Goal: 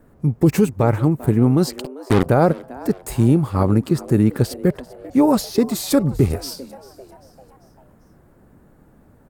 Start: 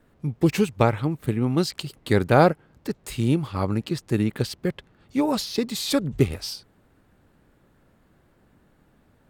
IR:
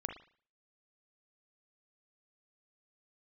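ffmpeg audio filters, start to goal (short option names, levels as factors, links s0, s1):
-filter_complex "[0:a]equalizer=f=3300:t=o:w=1.8:g=-13,alimiter=limit=0.178:level=0:latency=1:release=13,asplit=3[s0][s1][s2];[s0]afade=t=out:st=1.8:d=0.02[s3];[s1]acrusher=bits=3:mix=0:aa=0.5,afade=t=in:st=1.8:d=0.02,afade=t=out:st=2.25:d=0.02[s4];[s2]afade=t=in:st=2.25:d=0.02[s5];[s3][s4][s5]amix=inputs=3:normalize=0,asplit=2[s6][s7];[s7]asplit=4[s8][s9][s10][s11];[s8]adelay=394,afreqshift=130,volume=0.1[s12];[s9]adelay=788,afreqshift=260,volume=0.0479[s13];[s10]adelay=1182,afreqshift=390,volume=0.0229[s14];[s11]adelay=1576,afreqshift=520,volume=0.0111[s15];[s12][s13][s14][s15]amix=inputs=4:normalize=0[s16];[s6][s16]amix=inputs=2:normalize=0,volume=2.82"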